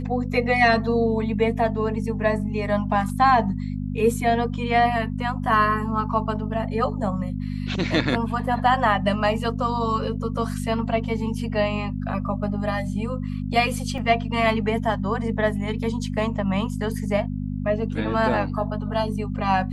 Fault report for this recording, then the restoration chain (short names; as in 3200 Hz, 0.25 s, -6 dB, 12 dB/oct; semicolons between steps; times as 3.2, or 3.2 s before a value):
hum 50 Hz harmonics 5 -28 dBFS
13.98 gap 2.4 ms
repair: de-hum 50 Hz, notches 5; interpolate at 13.98, 2.4 ms